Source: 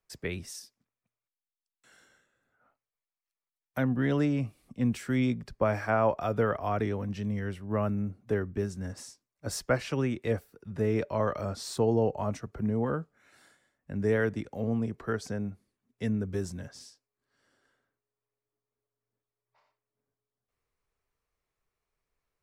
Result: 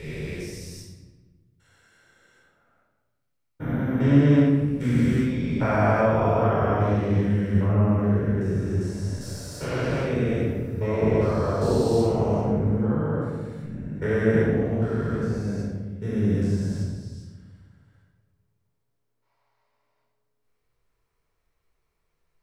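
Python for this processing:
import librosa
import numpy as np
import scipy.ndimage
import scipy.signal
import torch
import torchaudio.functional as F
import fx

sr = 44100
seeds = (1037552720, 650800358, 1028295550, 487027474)

y = fx.spec_steps(x, sr, hold_ms=400)
y = fx.room_shoebox(y, sr, seeds[0], volume_m3=900.0, walls='mixed', distance_m=4.5)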